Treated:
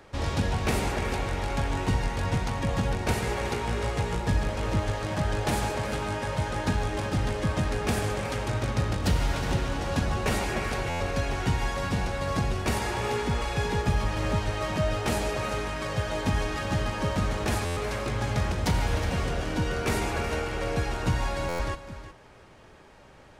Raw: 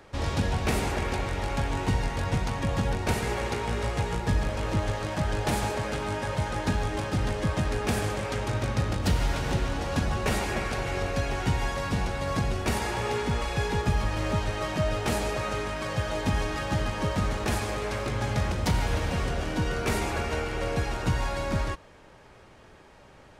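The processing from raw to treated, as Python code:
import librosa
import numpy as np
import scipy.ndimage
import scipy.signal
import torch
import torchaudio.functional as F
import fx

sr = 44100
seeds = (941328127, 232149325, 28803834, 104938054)

y = x + 10.0 ** (-13.5 / 20.0) * np.pad(x, (int(366 * sr / 1000.0), 0))[:len(x)]
y = fx.buffer_glitch(y, sr, at_s=(10.89, 17.65, 21.48), block=512, repeats=9)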